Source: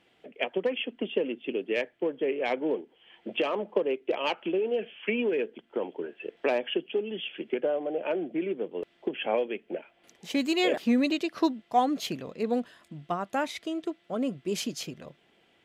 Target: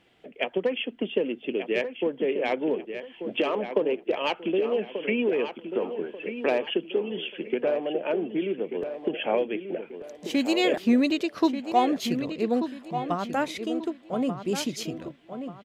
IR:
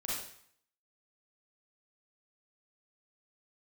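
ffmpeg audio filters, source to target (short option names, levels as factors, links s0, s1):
-filter_complex "[0:a]lowshelf=f=130:g=7.5,asplit=2[s0][s1];[s1]adelay=1187,lowpass=f=3600:p=1,volume=0.355,asplit=2[s2][s3];[s3]adelay=1187,lowpass=f=3600:p=1,volume=0.37,asplit=2[s4][s5];[s5]adelay=1187,lowpass=f=3600:p=1,volume=0.37,asplit=2[s6][s7];[s7]adelay=1187,lowpass=f=3600:p=1,volume=0.37[s8];[s0][s2][s4][s6][s8]amix=inputs=5:normalize=0,volume=1.19"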